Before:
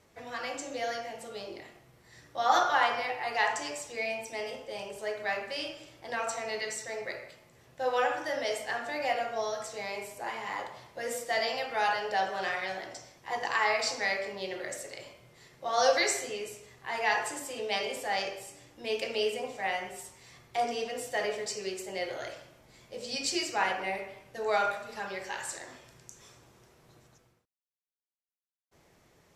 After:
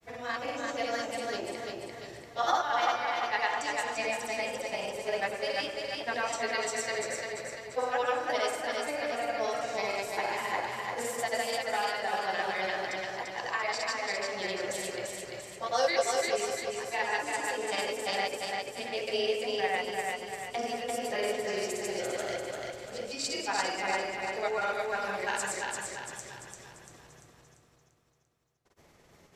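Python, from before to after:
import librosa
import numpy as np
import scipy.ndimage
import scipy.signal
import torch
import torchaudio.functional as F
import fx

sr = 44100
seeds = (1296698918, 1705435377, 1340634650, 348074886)

p1 = fx.rider(x, sr, range_db=4, speed_s=0.5)
p2 = fx.granulator(p1, sr, seeds[0], grain_ms=100.0, per_s=20.0, spray_ms=100.0, spread_st=0)
y = p2 + fx.echo_feedback(p2, sr, ms=343, feedback_pct=48, wet_db=-3.0, dry=0)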